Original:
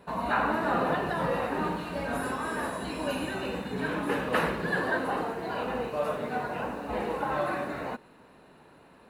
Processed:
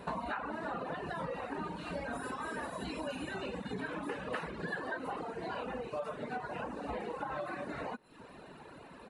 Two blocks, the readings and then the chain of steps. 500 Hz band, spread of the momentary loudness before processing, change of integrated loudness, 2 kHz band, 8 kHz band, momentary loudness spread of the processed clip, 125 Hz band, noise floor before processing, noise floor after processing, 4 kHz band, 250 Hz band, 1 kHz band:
-9.0 dB, 6 LU, -9.0 dB, -9.0 dB, -9.0 dB, 5 LU, -8.5 dB, -56 dBFS, -53 dBFS, -8.0 dB, -8.5 dB, -9.0 dB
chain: compressor 6:1, threshold -41 dBFS, peak gain reduction 18 dB; reverb removal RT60 1 s; downsampling 22050 Hz; gain +6 dB

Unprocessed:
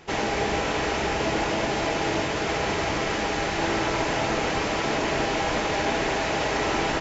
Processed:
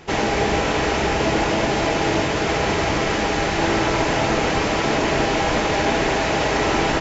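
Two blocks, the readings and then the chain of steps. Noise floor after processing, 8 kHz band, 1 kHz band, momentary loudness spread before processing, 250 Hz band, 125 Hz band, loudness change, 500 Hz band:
-22 dBFS, n/a, +5.0 dB, 1 LU, +6.5 dB, +7.0 dB, +5.0 dB, +5.5 dB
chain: low shelf 360 Hz +3 dB; gain +4.5 dB

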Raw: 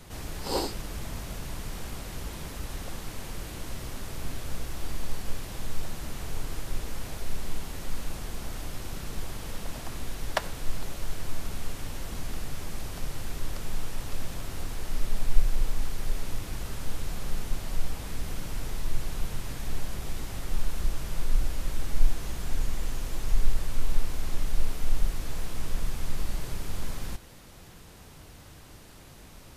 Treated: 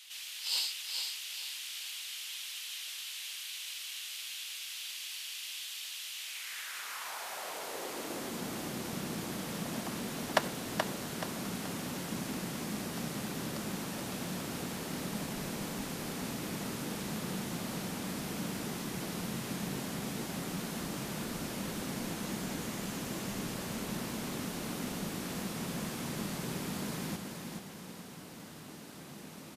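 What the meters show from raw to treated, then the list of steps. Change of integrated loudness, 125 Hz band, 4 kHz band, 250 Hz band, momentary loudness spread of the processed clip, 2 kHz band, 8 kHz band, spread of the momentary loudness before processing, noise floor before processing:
-1.0 dB, -5.5 dB, +4.0 dB, +5.0 dB, 3 LU, +1.5 dB, +1.5 dB, 7 LU, -49 dBFS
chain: high-pass sweep 3000 Hz -> 200 Hz, 6.17–8.46; feedback echo 0.428 s, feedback 38%, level -5 dB

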